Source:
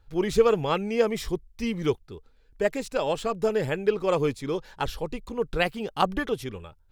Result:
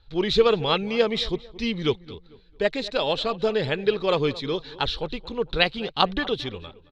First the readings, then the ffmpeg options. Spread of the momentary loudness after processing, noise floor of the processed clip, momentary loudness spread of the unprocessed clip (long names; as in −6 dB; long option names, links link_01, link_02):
10 LU, −54 dBFS, 11 LU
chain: -filter_complex "[0:a]lowpass=frequency=3900:width_type=q:width=6.3,asplit=2[link_01][link_02];[link_02]adelay=223,lowpass=frequency=2200:poles=1,volume=-18dB,asplit=2[link_03][link_04];[link_04]adelay=223,lowpass=frequency=2200:poles=1,volume=0.36,asplit=2[link_05][link_06];[link_06]adelay=223,lowpass=frequency=2200:poles=1,volume=0.36[link_07];[link_01][link_03][link_05][link_07]amix=inputs=4:normalize=0,volume=1dB"